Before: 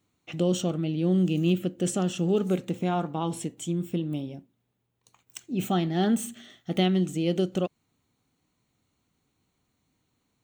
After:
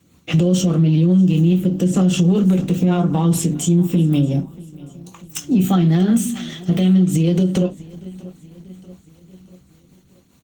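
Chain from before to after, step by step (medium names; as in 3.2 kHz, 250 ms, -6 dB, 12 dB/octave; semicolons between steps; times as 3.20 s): hum notches 50/100/150/200/250/300 Hz; 1.28–2.28 s: de-esser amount 85%; treble shelf 8.6 kHz +7 dB; 5.39–6.70 s: band-stop 880 Hz, Q 20; compression 4:1, threshold -32 dBFS, peak gain reduction 11.5 dB; Chebyshev shaper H 5 -27 dB, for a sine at -19 dBFS; rotary cabinet horn 5 Hz; feedback delay 635 ms, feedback 54%, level -23.5 dB; on a send at -3.5 dB: reverberation RT60 0.20 s, pre-delay 3 ms; on the sum: loudness maximiser +23 dB; trim -7 dB; Opus 16 kbps 48 kHz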